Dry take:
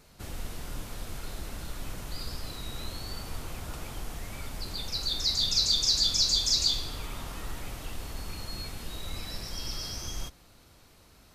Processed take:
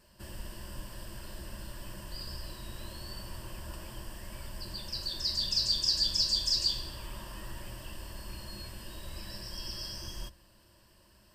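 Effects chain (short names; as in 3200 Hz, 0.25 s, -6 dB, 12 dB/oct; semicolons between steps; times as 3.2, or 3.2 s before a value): ripple EQ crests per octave 1.3, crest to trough 12 dB; gain -6 dB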